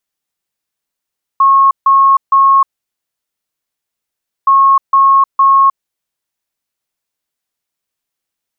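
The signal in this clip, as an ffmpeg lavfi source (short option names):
-f lavfi -i "aevalsrc='0.596*sin(2*PI*1090*t)*clip(min(mod(mod(t,3.07),0.46),0.31-mod(mod(t,3.07),0.46))/0.005,0,1)*lt(mod(t,3.07),1.38)':d=6.14:s=44100"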